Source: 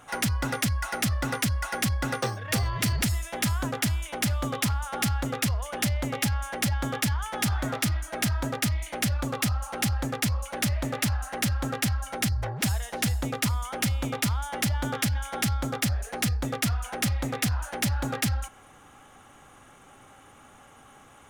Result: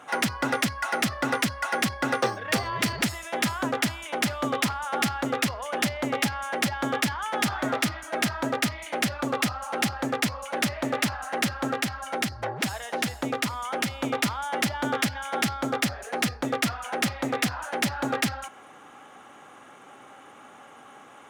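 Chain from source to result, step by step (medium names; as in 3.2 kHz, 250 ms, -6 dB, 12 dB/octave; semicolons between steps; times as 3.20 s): high-pass 240 Hz 12 dB/octave; treble shelf 5.6 kHz -11 dB; 11.68–14.03 s: compression, threshold -28 dBFS, peak gain reduction 3.5 dB; trim +5.5 dB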